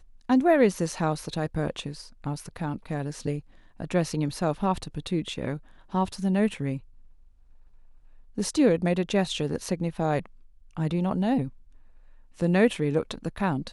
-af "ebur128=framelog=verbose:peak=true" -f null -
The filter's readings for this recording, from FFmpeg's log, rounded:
Integrated loudness:
  I:         -27.3 LUFS
  Threshold: -38.2 LUFS
Loudness range:
  LRA:         4.5 LU
  Threshold: -49.0 LUFS
  LRA low:   -31.5 LUFS
  LRA high:  -27.1 LUFS
True peak:
  Peak:       -8.3 dBFS